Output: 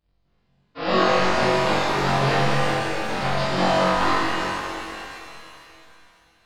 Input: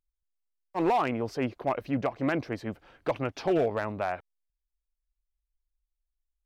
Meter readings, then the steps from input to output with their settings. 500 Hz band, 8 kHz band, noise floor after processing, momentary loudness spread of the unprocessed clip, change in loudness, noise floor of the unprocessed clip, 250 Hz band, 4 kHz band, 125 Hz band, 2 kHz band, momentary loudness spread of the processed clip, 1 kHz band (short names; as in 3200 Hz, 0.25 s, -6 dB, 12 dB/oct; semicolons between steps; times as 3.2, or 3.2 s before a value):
+7.0 dB, n/a, -67 dBFS, 10 LU, +8.5 dB, under -85 dBFS, +4.5 dB, +20.0 dB, +10.5 dB, +14.0 dB, 13 LU, +10.5 dB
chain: cycle switcher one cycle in 2, inverted; notches 60/120/180/240/300/360/420 Hz; reverb removal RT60 1.7 s; high shelf 4300 Hz +5 dB; compressor 2.5:1, threshold -36 dBFS, peak gain reduction 9.5 dB; downsampling 11025 Hz; on a send: flutter echo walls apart 3.7 m, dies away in 0.66 s; on the sum: auto swell 0.124 s; shimmer reverb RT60 2.8 s, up +7 st, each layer -8 dB, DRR -6.5 dB; gain +6 dB